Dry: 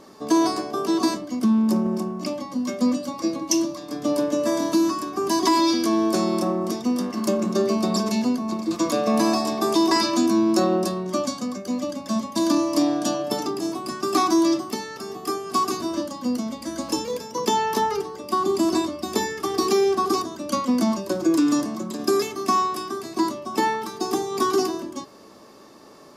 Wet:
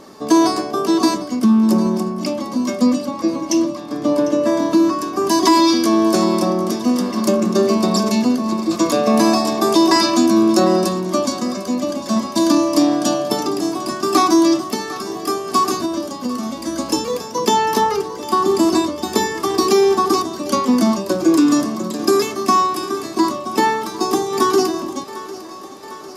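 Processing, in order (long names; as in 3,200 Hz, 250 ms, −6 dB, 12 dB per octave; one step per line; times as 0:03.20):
0:03.05–0:05.01: high-shelf EQ 4,600 Hz −11.5 dB
0:15.85–0:16.58: downward compressor, threshold −26 dBFS, peak gain reduction 6 dB
feedback echo with a high-pass in the loop 751 ms, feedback 70%, high-pass 230 Hz, level −16 dB
level +6 dB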